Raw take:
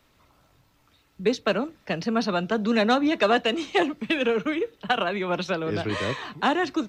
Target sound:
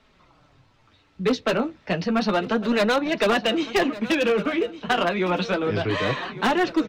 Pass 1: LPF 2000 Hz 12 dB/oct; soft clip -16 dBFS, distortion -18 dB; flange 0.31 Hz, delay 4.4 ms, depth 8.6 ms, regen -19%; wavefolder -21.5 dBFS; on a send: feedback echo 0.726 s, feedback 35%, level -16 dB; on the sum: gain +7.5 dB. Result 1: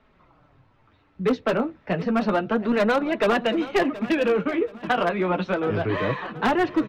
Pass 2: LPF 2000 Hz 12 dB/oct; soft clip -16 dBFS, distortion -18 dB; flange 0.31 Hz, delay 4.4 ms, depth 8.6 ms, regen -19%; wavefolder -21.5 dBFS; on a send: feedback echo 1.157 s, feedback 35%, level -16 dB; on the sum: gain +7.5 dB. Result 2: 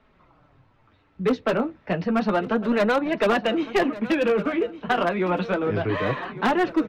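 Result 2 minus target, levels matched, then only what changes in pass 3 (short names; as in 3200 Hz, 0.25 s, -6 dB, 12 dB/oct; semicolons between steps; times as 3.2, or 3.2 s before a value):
4000 Hz band -6.0 dB
change: LPF 4800 Hz 12 dB/oct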